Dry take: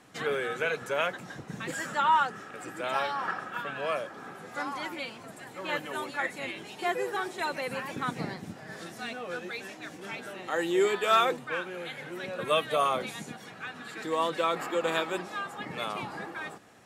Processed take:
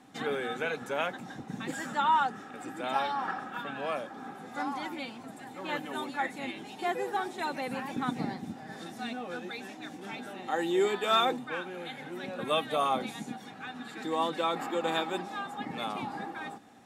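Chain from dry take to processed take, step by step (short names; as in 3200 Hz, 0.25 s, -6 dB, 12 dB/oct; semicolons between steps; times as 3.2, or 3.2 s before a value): small resonant body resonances 250/790/3600 Hz, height 11 dB, ringing for 35 ms; gain -4 dB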